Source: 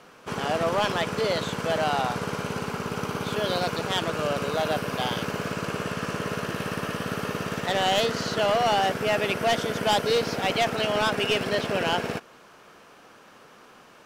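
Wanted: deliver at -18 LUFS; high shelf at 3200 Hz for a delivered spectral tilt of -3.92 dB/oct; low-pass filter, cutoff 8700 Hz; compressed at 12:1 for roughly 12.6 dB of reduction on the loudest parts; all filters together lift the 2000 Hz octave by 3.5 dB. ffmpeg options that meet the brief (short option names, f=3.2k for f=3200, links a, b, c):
-af "lowpass=8.7k,equalizer=f=2k:t=o:g=3.5,highshelf=f=3.2k:g=3.5,acompressor=threshold=-31dB:ratio=12,volume=16.5dB"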